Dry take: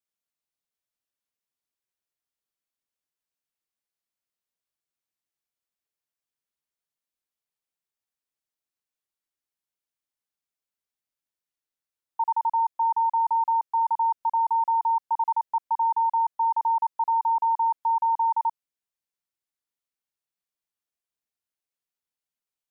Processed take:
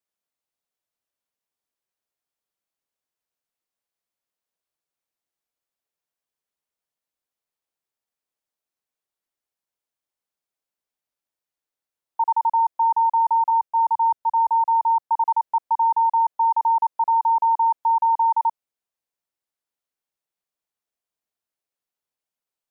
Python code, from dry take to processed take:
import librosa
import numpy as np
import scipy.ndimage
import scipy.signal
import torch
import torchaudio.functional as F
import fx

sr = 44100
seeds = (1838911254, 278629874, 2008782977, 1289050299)

y = fx.peak_eq(x, sr, hz=640.0, db=5.5, octaves=1.9)
y = fx.band_widen(y, sr, depth_pct=100, at=(13.5, 15.11))